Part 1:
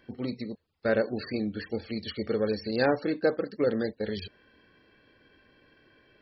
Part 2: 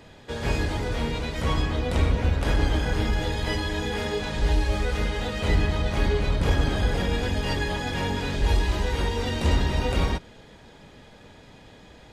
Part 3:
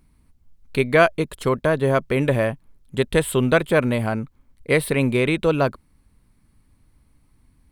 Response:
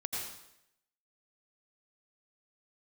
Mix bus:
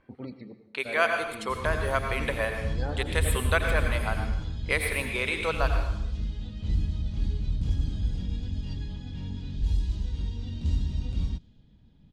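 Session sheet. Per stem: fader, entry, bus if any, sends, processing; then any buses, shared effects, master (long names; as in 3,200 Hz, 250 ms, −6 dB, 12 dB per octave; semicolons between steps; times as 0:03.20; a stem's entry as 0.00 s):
−12.5 dB, 0.00 s, bus A, send −11.5 dB, parametric band 940 Hz +9 dB 1.7 octaves; pitch vibrato 1.4 Hz 47 cents; automatic ducking −7 dB, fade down 0.20 s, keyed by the third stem
−13.0 dB, 1.20 s, no bus, no send, flat-topped bell 940 Hz −14 dB 3 octaves
+1.5 dB, 0.00 s, bus A, send −8 dB, high-pass filter 910 Hz 12 dB per octave; amplitude modulation by smooth noise, depth 55%
bus A: 0.0 dB, reverb reduction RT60 2 s; downward compressor 1.5 to 1, threshold −42 dBFS, peak gain reduction 10 dB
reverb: on, RT60 0.80 s, pre-delay 77 ms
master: low-pass that shuts in the quiet parts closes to 2,600 Hz, open at −27.5 dBFS; low-shelf EQ 240 Hz +10 dB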